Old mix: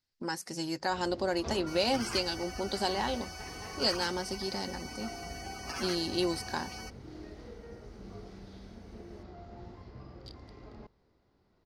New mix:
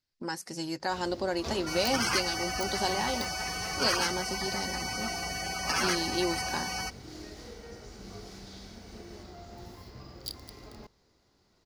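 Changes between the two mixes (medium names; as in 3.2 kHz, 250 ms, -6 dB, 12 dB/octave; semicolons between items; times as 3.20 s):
first sound: remove tape spacing loss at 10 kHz 27 dB; second sound +10.5 dB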